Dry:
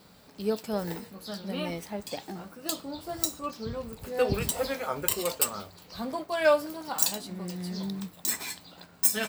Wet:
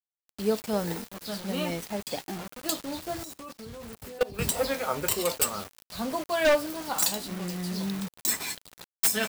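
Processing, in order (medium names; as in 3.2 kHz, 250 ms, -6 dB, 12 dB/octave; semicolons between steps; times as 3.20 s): bit crusher 7-bit; wavefolder -17.5 dBFS; 3.23–4.39 s: level held to a coarse grid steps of 22 dB; trim +2.5 dB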